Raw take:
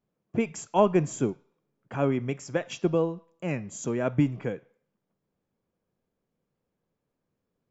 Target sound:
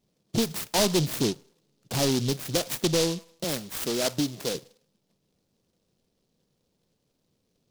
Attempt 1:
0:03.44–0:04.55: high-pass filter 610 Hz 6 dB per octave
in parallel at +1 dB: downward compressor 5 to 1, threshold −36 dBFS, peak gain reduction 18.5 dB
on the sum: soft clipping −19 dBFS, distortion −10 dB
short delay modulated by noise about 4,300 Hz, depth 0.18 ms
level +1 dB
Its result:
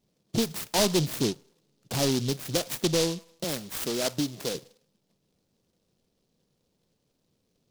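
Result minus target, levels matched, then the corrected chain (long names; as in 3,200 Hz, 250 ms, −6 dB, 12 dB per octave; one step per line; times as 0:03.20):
downward compressor: peak gain reduction +7 dB
0:03.44–0:04.55: high-pass filter 610 Hz 6 dB per octave
in parallel at +1 dB: downward compressor 5 to 1, threshold −27.5 dBFS, peak gain reduction 12 dB
on the sum: soft clipping −19 dBFS, distortion −9 dB
short delay modulated by noise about 4,300 Hz, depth 0.18 ms
level +1 dB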